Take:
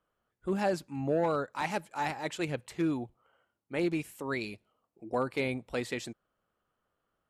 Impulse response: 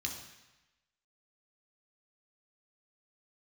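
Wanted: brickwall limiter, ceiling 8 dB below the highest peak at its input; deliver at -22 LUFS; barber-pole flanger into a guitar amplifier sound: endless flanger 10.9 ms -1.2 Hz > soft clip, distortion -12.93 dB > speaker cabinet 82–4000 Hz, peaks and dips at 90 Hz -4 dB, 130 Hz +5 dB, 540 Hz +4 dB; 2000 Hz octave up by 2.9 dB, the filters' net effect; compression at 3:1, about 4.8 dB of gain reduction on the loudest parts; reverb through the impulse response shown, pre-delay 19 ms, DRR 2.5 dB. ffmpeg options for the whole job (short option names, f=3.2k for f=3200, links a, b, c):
-filter_complex "[0:a]equalizer=f=2k:t=o:g=3.5,acompressor=threshold=-31dB:ratio=3,alimiter=level_in=4.5dB:limit=-24dB:level=0:latency=1,volume=-4.5dB,asplit=2[a][b];[1:a]atrim=start_sample=2205,adelay=19[c];[b][c]afir=irnorm=-1:irlink=0,volume=-4dB[d];[a][d]amix=inputs=2:normalize=0,asplit=2[e][f];[f]adelay=10.9,afreqshift=-1.2[g];[e][g]amix=inputs=2:normalize=1,asoftclip=threshold=-35.5dB,highpass=82,equalizer=f=90:t=q:w=4:g=-4,equalizer=f=130:t=q:w=4:g=5,equalizer=f=540:t=q:w=4:g=4,lowpass=f=4k:w=0.5412,lowpass=f=4k:w=1.3066,volume=20.5dB"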